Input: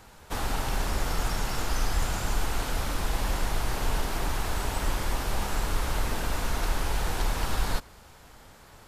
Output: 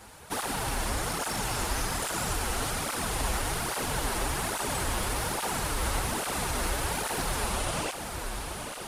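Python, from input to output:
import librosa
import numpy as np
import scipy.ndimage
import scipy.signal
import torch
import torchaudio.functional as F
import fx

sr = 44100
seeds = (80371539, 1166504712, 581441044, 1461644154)

p1 = fx.tape_stop_end(x, sr, length_s=1.58)
p2 = fx.low_shelf(p1, sr, hz=110.0, db=-6.0)
p3 = 10.0 ** (-34.0 / 20.0) * np.tanh(p2 / 10.0 ** (-34.0 / 20.0))
p4 = p2 + (p3 * librosa.db_to_amplitude(-4.0))
p5 = fx.peak_eq(p4, sr, hz=9600.0, db=9.0, octaves=0.34)
p6 = p5 + fx.echo_diffused(p5, sr, ms=1006, feedback_pct=59, wet_db=-7, dry=0)
p7 = fx.flanger_cancel(p6, sr, hz=1.2, depth_ms=7.5)
y = p7 * librosa.db_to_amplitude(1.5)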